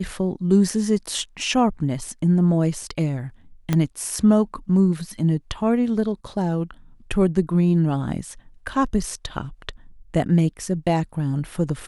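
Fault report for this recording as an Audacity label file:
3.730000	3.730000	pop -8 dBFS

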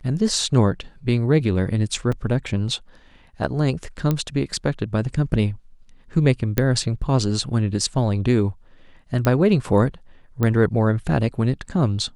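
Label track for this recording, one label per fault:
2.120000	2.120000	dropout 4.5 ms
4.110000	4.110000	pop -9 dBFS
6.580000	6.580000	pop -5 dBFS
9.250000	9.250000	pop -8 dBFS
10.430000	10.430000	pop -10 dBFS

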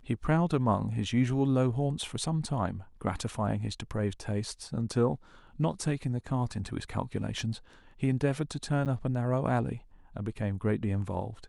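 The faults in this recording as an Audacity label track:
8.850000	8.860000	dropout 8.9 ms

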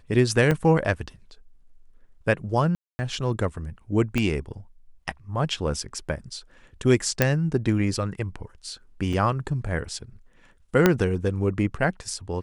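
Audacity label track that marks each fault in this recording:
0.510000	0.510000	dropout 4.2 ms
2.750000	2.990000	dropout 240 ms
4.180000	4.180000	pop -12 dBFS
7.220000	7.220000	pop -4 dBFS
9.130000	9.130000	dropout 5 ms
10.860000	10.860000	pop -3 dBFS

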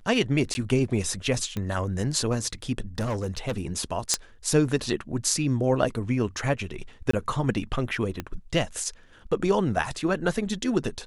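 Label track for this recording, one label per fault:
0.540000	0.550000	dropout 10 ms
1.570000	1.570000	pop -17 dBFS
2.980000	3.610000	clipped -23.5 dBFS
4.140000	4.140000	pop -6 dBFS
7.110000	7.130000	dropout 24 ms
8.200000	8.200000	pop -16 dBFS

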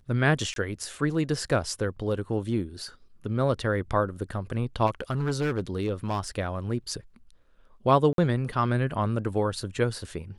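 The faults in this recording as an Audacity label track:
0.540000	0.560000	dropout 22 ms
4.860000	6.280000	clipped -22 dBFS
8.130000	8.180000	dropout 52 ms

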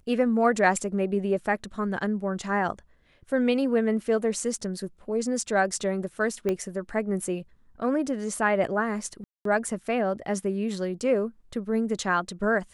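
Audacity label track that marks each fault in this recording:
6.490000	6.490000	pop -15 dBFS
9.240000	9.450000	dropout 213 ms

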